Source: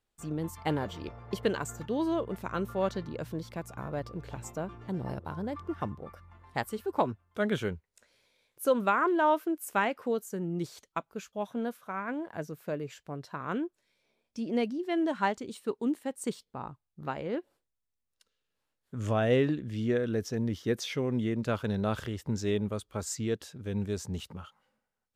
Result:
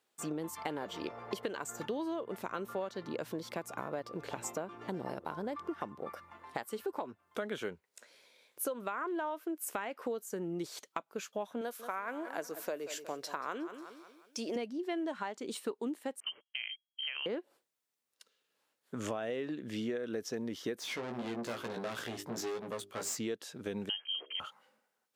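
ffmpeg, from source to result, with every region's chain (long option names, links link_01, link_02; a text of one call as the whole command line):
ffmpeg -i in.wav -filter_complex "[0:a]asettb=1/sr,asplit=3[link_01][link_02][link_03];[link_01]atrim=end=11.614[link_04];[link_02]atrim=start=11.61:end=14.56,asetpts=PTS-STARTPTS,afade=type=in:duration=0.004:curve=qsin,afade=type=out:start_time=2.946:duration=0.004:curve=qsin,bass=frequency=250:gain=-13,treble=frequency=4000:gain=7,aecho=1:1:182|364|546|728:0.158|0.0729|0.0335|0.0154,atrim=end_sample=130095[link_05];[link_03]atrim=start=14.556[link_06];[link_04][link_05]acrossfade=duration=0.004:curve1=hsin:curve2=qsin[link_07];[link_07][link_06]acrossfade=duration=0.004:curve1=qsin:curve2=hsin,asettb=1/sr,asplit=3[link_08][link_09][link_10];[link_08]atrim=end=16.204[link_11];[link_09]atrim=start=16.2:end=17.26,asetpts=PTS-STARTPTS,afade=type=in:duration=0.004:curve=qsin,afade=type=out:start_time=1.056:duration=0.004:curve=qsin,agate=range=-18dB:threshold=-52dB:ratio=16:release=100:detection=peak,acompressor=threshold=-37dB:ratio=6:attack=3.2:release=140:knee=1:detection=peak,lowpass=frequency=2800:width_type=q:width=0.5098,lowpass=frequency=2800:width_type=q:width=0.6013,lowpass=frequency=2800:width_type=q:width=0.9,lowpass=frequency=2800:width_type=q:width=2.563,afreqshift=-3300[link_12];[link_10]atrim=start=17.256[link_13];[link_11][link_12]acrossfade=duration=0.004:curve1=hsin:curve2=qsin[link_14];[link_14][link_13]acrossfade=duration=0.004:curve1=qsin:curve2=hsin,asettb=1/sr,asplit=3[link_15][link_16][link_17];[link_15]atrim=end=20.804[link_18];[link_16]atrim=start=20.8:end=23.19,asetpts=PTS-STARTPTS,afade=type=in:duration=0.004:curve=qsin,afade=type=out:start_time=2.386:duration=0.004:curve=qsin,bandreject=frequency=50:width_type=h:width=6,bandreject=frequency=100:width_type=h:width=6,bandreject=frequency=150:width_type=h:width=6,bandreject=frequency=200:width_type=h:width=6,bandreject=frequency=250:width_type=h:width=6,bandreject=frequency=300:width_type=h:width=6,bandreject=frequency=350:width_type=h:width=6,bandreject=frequency=400:width_type=h:width=6,aeval=exprs='(tanh(70.8*val(0)+0.55)-tanh(0.55))/70.8':channel_layout=same,asplit=2[link_19][link_20];[link_20]adelay=17,volume=-5.5dB[link_21];[link_19][link_21]amix=inputs=2:normalize=0,atrim=end_sample=105399[link_22];[link_17]atrim=start=23.186[link_23];[link_18][link_22]acrossfade=duration=0.004:curve1=hsin:curve2=qsin[link_24];[link_24][link_23]acrossfade=duration=0.004:curve1=qsin:curve2=hsin,asettb=1/sr,asplit=3[link_25][link_26][link_27];[link_25]atrim=end=23.894[link_28];[link_26]atrim=start=23.89:end=24.4,asetpts=PTS-STARTPTS,afade=type=in:duration=0.004:curve=qsin,afade=type=out:start_time=0.506:duration=0.004:curve=qsin,lowpass=frequency=2800:width_type=q:width=0.5098,lowpass=frequency=2800:width_type=q:width=0.6013,lowpass=frequency=2800:width_type=q:width=0.9,lowpass=frequency=2800:width_type=q:width=2.563,afreqshift=-3300,equalizer=frequency=170:width=1.8:gain=-12.5,bandreject=frequency=70.4:width_type=h:width=4,bandreject=frequency=140.8:width_type=h:width=4,bandreject=frequency=211.2:width_type=h:width=4,bandreject=frequency=281.6:width_type=h:width=4,bandreject=frequency=352:width_type=h:width=4,bandreject=frequency=422.4:width_type=h:width=4,bandreject=frequency=492.8:width_type=h:width=4,bandreject=frequency=563.2:width_type=h:width=4,bandreject=frequency=633.6:width_type=h:width=4[link_29];[link_27]atrim=start=24.396[link_30];[link_28][link_29]acrossfade=duration=0.004:curve1=hsin:curve2=qsin[link_31];[link_31][link_30]acrossfade=duration=0.004:curve1=qsin:curve2=hsin,highpass=290,alimiter=limit=-21dB:level=0:latency=1:release=256,acompressor=threshold=-41dB:ratio=6,volume=6.5dB" out.wav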